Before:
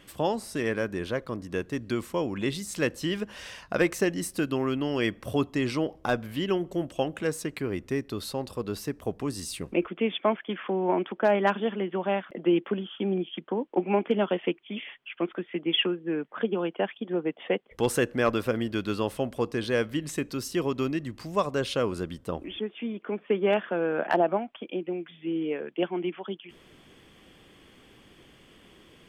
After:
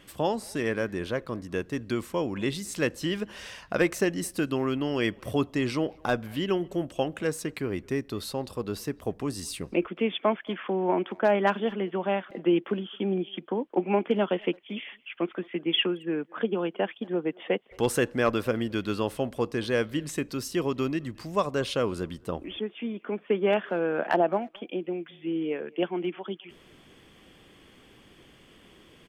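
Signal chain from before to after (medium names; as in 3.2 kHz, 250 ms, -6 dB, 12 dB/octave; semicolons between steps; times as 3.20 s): speakerphone echo 220 ms, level -25 dB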